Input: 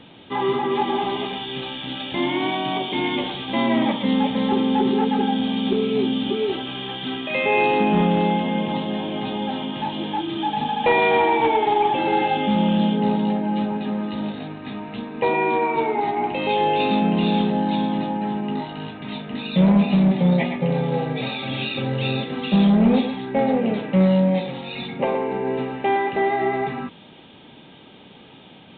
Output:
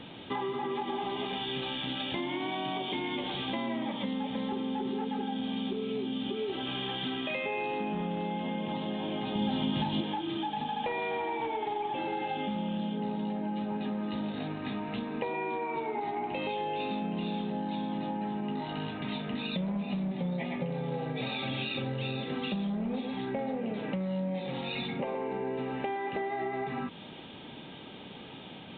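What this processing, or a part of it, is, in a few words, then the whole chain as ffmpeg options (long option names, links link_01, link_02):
serial compression, peaks first: -filter_complex "[0:a]acompressor=threshold=-26dB:ratio=6,acompressor=threshold=-34dB:ratio=2,asettb=1/sr,asplit=3[link_01][link_02][link_03];[link_01]atrim=end=9.354[link_04];[link_02]atrim=start=9.35:end=10.01,asetpts=PTS-STARTPTS,afade=type=in:duration=0.004:curve=qsin,afade=type=out:start_time=0.656:duration=0.004:curve=qsin,bass=frequency=250:gain=10,treble=frequency=4000:gain=11[link_05];[link_03]atrim=start=10.006[link_06];[link_04][link_05]acrossfade=duration=0.004:curve1=hsin:curve2=qsin[link_07];[link_07][link_06]acrossfade=duration=0.004:curve1=qsin:curve2=hsin"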